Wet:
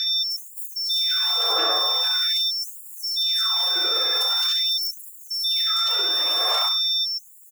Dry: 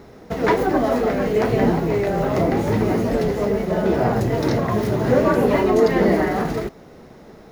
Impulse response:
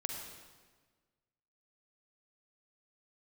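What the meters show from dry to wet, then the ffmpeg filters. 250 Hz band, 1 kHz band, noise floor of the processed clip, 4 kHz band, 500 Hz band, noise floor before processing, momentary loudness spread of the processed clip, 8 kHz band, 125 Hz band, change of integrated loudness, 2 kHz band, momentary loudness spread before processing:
-29.0 dB, -7.0 dB, -44 dBFS, +22.5 dB, -19.0 dB, -44 dBFS, 9 LU, +5.5 dB, under -40 dB, -0.5 dB, -5.5 dB, 5 LU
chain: -af "equalizer=f=2000:w=4.8:g=-10,bandreject=f=650:w=13,acompressor=threshold=0.0282:ratio=2,alimiter=limit=0.0668:level=0:latency=1:release=30,aphaser=in_gain=1:out_gain=1:delay=2.5:decay=0.63:speed=0.61:type=sinusoidal,aeval=exprs='val(0)+0.0282*sin(2*PI*4500*n/s)':c=same,crystalizer=i=7.5:c=0,aeval=exprs='val(0)*sin(2*PI*910*n/s)':c=same,aecho=1:1:68|136|204|272:0.398|0.155|0.0606|0.0236,afftfilt=real='re*gte(b*sr/1024,260*pow(6900/260,0.5+0.5*sin(2*PI*0.44*pts/sr)))':imag='im*gte(b*sr/1024,260*pow(6900/260,0.5+0.5*sin(2*PI*0.44*pts/sr)))':win_size=1024:overlap=0.75,volume=0.841"

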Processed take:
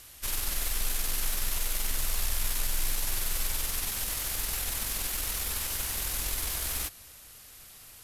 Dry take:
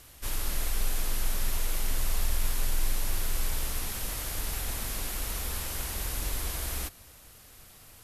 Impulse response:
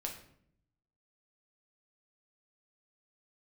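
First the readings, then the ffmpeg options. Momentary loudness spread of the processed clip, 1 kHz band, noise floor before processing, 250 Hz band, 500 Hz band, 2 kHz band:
11 LU, -0.5 dB, -53 dBFS, -3.5 dB, -2.5 dB, +2.0 dB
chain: -af "tiltshelf=f=1300:g=-4,aeval=exprs='0.133*(cos(1*acos(clip(val(0)/0.133,-1,1)))-cos(1*PI/2))+0.0075*(cos(8*acos(clip(val(0)/0.133,-1,1)))-cos(8*PI/2))':c=same"

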